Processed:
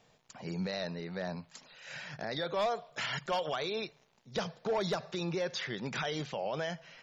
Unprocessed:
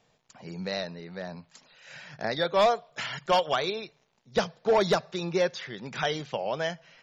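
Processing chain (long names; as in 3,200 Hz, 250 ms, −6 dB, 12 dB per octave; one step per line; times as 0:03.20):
brickwall limiter −27.5 dBFS, peak gain reduction 11.5 dB
level +1.5 dB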